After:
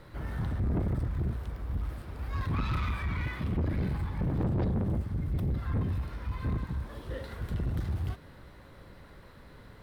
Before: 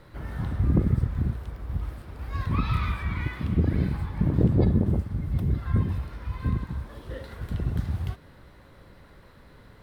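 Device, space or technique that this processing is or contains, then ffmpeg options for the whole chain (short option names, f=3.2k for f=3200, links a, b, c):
saturation between pre-emphasis and de-emphasis: -af "highshelf=f=2.9k:g=9,asoftclip=type=tanh:threshold=-25.5dB,highshelf=f=2.9k:g=-9"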